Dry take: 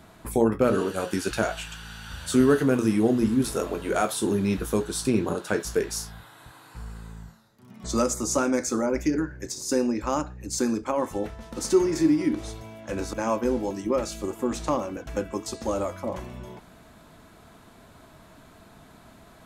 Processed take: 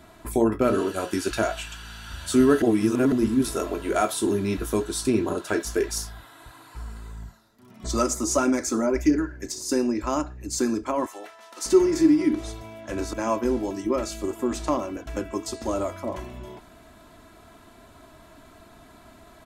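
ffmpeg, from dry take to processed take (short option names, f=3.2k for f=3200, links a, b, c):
-filter_complex "[0:a]asettb=1/sr,asplit=3[a][b][c];[a]atrim=end=5.364[d];[b]atrim=start=5.36:end=9.59,asetpts=PTS-STARTPTS,afade=t=in:d=0.004:c=qsin,afade=t=out:st=4.226:d=0.004:c=qsin,aphaser=in_gain=1:out_gain=1:delay=4.6:decay=0.34:speed=1.6:type=triangular[e];[c]atrim=start=9.586[f];[d][e]acrossfade=d=0.004:c1=hsin:c2=qsin[g];[g][f]acrossfade=d=0.004:c1=qsin:c2=hsin,asettb=1/sr,asplit=3[h][i][j];[h]atrim=end=11.064[k];[i]atrim=start=11.06:end=11.66,asetpts=PTS-STARTPTS,afade=t=in:d=0.004:c=qsin,afade=t=out:st=0.596:d=0.004:c=qsin,highpass=810[l];[j]atrim=start=11.656[m];[k][l]acrossfade=d=0.004:c1=hsin:c2=qsin[n];[n][m]acrossfade=d=0.004:c1=qsin:c2=hsin,asplit=3[o][p][q];[o]atrim=end=2.622[r];[p]atrim=start=2.618:end=3.122,asetpts=PTS-STARTPTS,areverse[s];[q]atrim=start=3.118[t];[r][s]acrossfade=d=0.004:c1=hsin:c2=hsin[u];[u][t]acrossfade=d=0.004:c1=hsin:c2=hsin,aecho=1:1:3:0.46"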